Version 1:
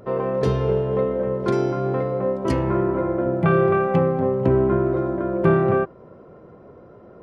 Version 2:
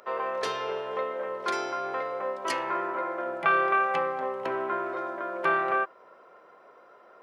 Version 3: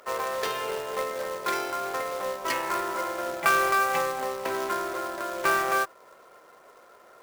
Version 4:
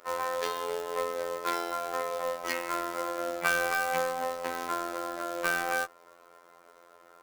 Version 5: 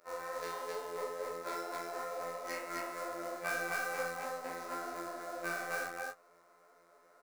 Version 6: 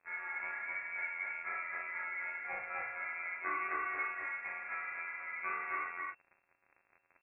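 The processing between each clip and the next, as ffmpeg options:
ffmpeg -i in.wav -af "highpass=1100,volume=4dB" out.wav
ffmpeg -i in.wav -af "equalizer=frequency=2100:width=1.8:gain=3,acrusher=bits=2:mode=log:mix=0:aa=0.000001" out.wav
ffmpeg -i in.wav -af "afftfilt=real='hypot(re,im)*cos(PI*b)':imag='0':win_size=2048:overlap=0.75" out.wav
ffmpeg -i in.wav -af "equalizer=frequency=630:width_type=o:width=0.33:gain=3,equalizer=frequency=1000:width_type=o:width=0.33:gain=-4,equalizer=frequency=3150:width_type=o:width=0.33:gain=-11,equalizer=frequency=16000:width_type=o:width=0.33:gain=-3,flanger=delay=18:depth=4.7:speed=2.2,aecho=1:1:40.82|262.4:0.631|0.891,volume=-7dB" out.wav
ffmpeg -i in.wav -af "acrusher=bits=8:mix=0:aa=0.000001,lowpass=frequency=2300:width_type=q:width=0.5098,lowpass=frequency=2300:width_type=q:width=0.6013,lowpass=frequency=2300:width_type=q:width=0.9,lowpass=frequency=2300:width_type=q:width=2.563,afreqshift=-2700" out.wav

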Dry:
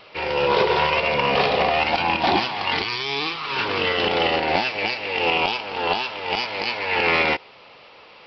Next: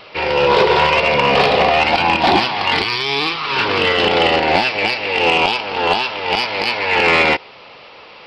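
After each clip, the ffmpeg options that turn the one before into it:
ffmpeg -i in.wav -af "acontrast=81" out.wav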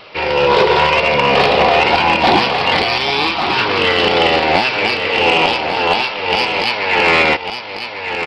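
ffmpeg -i in.wav -af "aecho=1:1:1147:0.422,volume=1dB" out.wav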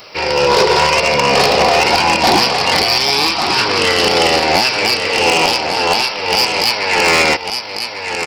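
ffmpeg -i in.wav -af "aexciter=amount=10.1:drive=3.5:freq=5100,asoftclip=type=hard:threshold=-4.5dB" out.wav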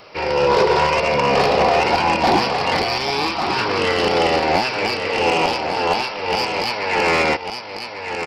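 ffmpeg -i in.wav -af "lowpass=frequency=1800:poles=1,volume=-2.5dB" out.wav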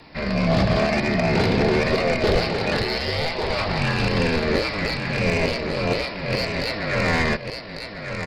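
ffmpeg -i in.wav -af "afreqshift=-320,volume=-3.5dB" out.wav

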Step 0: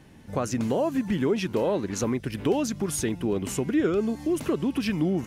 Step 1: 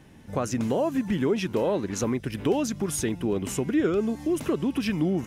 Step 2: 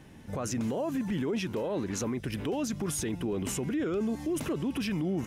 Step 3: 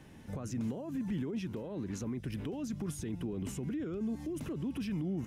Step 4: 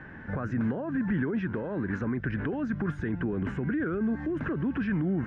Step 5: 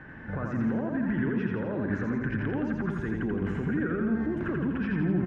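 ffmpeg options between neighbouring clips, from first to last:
ffmpeg -i in.wav -af "bandreject=frequency=4400:width=20" out.wav
ffmpeg -i in.wav -af "alimiter=level_in=0.5dB:limit=-24dB:level=0:latency=1:release=12,volume=-0.5dB" out.wav
ffmpeg -i in.wav -filter_complex "[0:a]acrossover=split=290[link_01][link_02];[link_02]acompressor=threshold=-47dB:ratio=2.5[link_03];[link_01][link_03]amix=inputs=2:normalize=0,volume=-2.5dB" out.wav
ffmpeg -i in.wav -af "lowpass=frequency=1600:width_type=q:width=6.7,volume=7dB" out.wav
ffmpeg -i in.wav -af "aecho=1:1:84|168|252|336|420|504|588|672:0.708|0.411|0.238|0.138|0.0801|0.0465|0.027|0.0156,volume=-1.5dB" out.wav

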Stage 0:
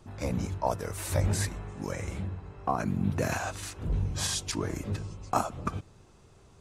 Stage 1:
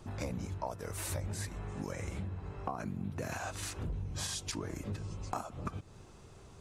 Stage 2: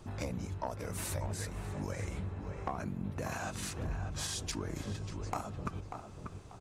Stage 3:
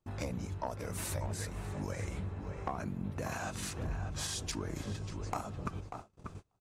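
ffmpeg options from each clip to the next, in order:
ffmpeg -i in.wav -af "acompressor=threshold=-38dB:ratio=6,volume=2.5dB" out.wav
ffmpeg -i in.wav -filter_complex "[0:a]aeval=exprs='0.1*(cos(1*acos(clip(val(0)/0.1,-1,1)))-cos(1*PI/2))+0.0158*(cos(2*acos(clip(val(0)/0.1,-1,1)))-cos(2*PI/2))+0.0282*(cos(4*acos(clip(val(0)/0.1,-1,1)))-cos(4*PI/2))+0.0112*(cos(6*acos(clip(val(0)/0.1,-1,1)))-cos(6*PI/2))':channel_layout=same,asplit=2[link_01][link_02];[link_02]adelay=590,lowpass=frequency=2100:poles=1,volume=-6.5dB,asplit=2[link_03][link_04];[link_04]adelay=590,lowpass=frequency=2100:poles=1,volume=0.31,asplit=2[link_05][link_06];[link_06]adelay=590,lowpass=frequency=2100:poles=1,volume=0.31,asplit=2[link_07][link_08];[link_08]adelay=590,lowpass=frequency=2100:poles=1,volume=0.31[link_09];[link_01][link_03][link_05][link_07][link_09]amix=inputs=5:normalize=0" out.wav
ffmpeg -i in.wav -af "agate=range=-29dB:threshold=-45dB:ratio=16:detection=peak" out.wav

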